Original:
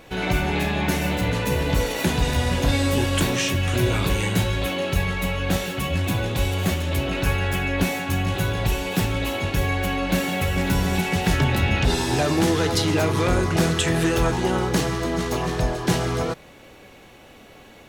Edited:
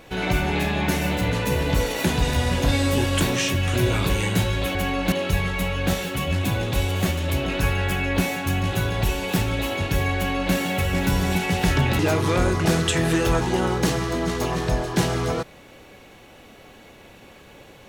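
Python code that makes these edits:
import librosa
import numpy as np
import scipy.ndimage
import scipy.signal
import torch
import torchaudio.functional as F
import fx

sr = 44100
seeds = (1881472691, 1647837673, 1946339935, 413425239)

y = fx.edit(x, sr, fx.duplicate(start_s=9.79, length_s=0.37, to_s=4.75),
    fx.cut(start_s=11.62, length_s=1.28), tone=tone)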